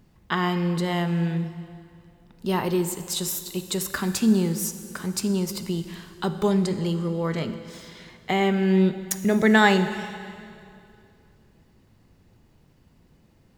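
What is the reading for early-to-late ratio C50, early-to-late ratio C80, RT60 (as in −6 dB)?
10.5 dB, 11.5 dB, 2.5 s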